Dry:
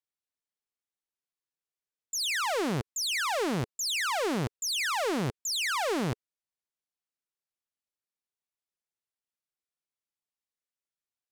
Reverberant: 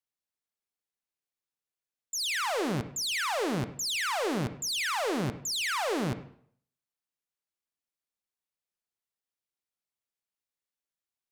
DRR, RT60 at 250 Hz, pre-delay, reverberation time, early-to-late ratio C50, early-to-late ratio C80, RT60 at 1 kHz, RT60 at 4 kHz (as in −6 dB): 10.5 dB, 0.55 s, 38 ms, 0.60 s, 11.5 dB, 15.0 dB, 0.55 s, 0.50 s